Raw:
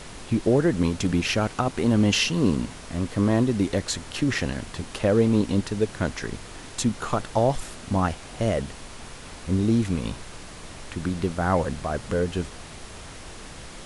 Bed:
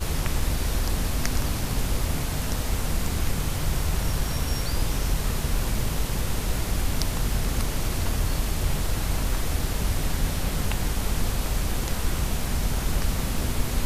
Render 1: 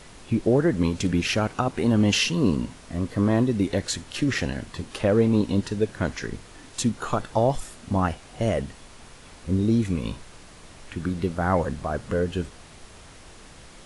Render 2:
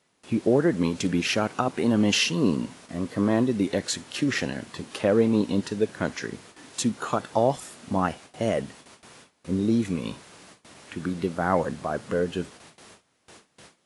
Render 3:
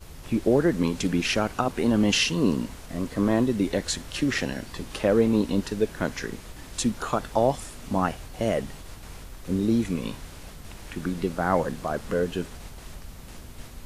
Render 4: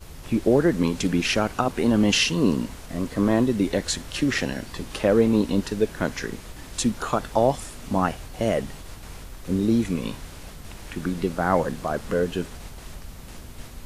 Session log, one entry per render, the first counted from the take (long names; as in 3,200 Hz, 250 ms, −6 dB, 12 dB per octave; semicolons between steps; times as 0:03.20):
noise reduction from a noise print 6 dB
noise gate with hold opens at −35 dBFS; high-pass filter 160 Hz 12 dB per octave
mix in bed −17 dB
level +2 dB